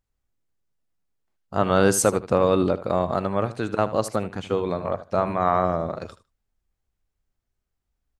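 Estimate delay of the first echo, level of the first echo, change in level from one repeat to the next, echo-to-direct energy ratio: 77 ms, −15.0 dB, −16.0 dB, −15.0 dB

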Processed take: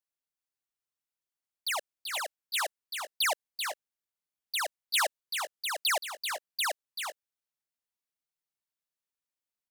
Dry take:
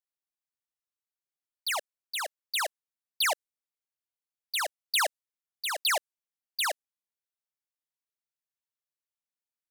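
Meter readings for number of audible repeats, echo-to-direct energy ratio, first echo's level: 1, −6.0 dB, −6.5 dB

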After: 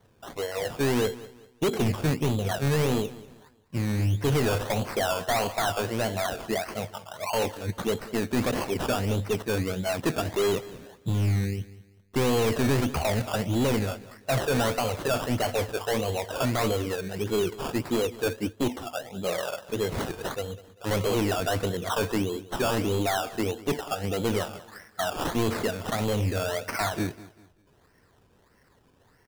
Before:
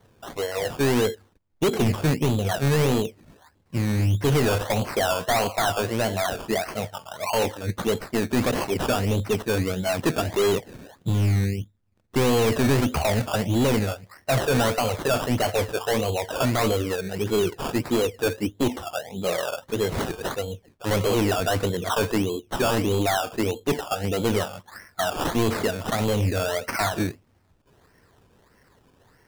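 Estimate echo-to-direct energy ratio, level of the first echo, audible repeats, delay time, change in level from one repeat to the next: −17.5 dB, −18.0 dB, 2, 195 ms, −9.5 dB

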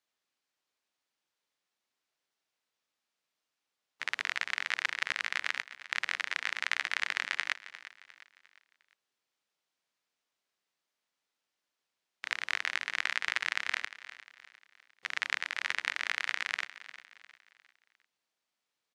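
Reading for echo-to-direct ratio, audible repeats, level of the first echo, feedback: −14.5 dB, 3, −15.5 dB, 42%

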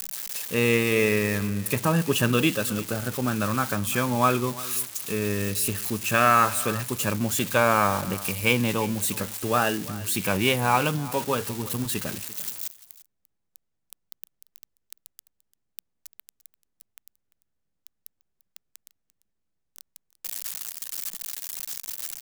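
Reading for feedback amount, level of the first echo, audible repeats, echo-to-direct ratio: repeats not evenly spaced, −18.5 dB, 1, −18.5 dB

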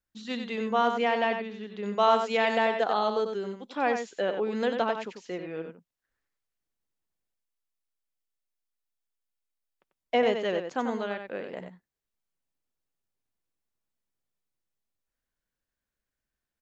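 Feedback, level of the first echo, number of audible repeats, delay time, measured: repeats not evenly spaced, −7.0 dB, 1, 93 ms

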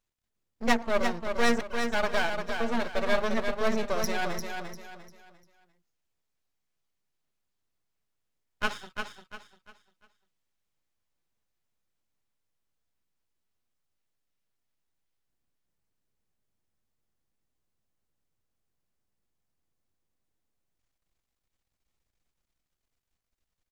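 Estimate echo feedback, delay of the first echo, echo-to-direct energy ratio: 33%, 348 ms, −5.5 dB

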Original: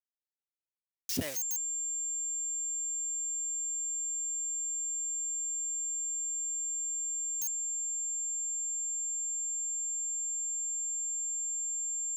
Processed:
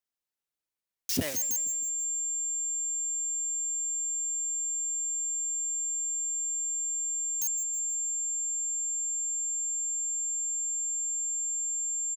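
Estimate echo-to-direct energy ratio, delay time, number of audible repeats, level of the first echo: −16.5 dB, 159 ms, 3, −18.0 dB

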